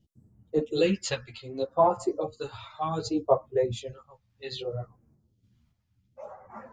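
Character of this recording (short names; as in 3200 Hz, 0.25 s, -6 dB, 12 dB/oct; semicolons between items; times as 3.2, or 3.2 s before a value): phasing stages 2, 0.65 Hz, lowest notch 360–3500 Hz; random-step tremolo; a shimmering, thickened sound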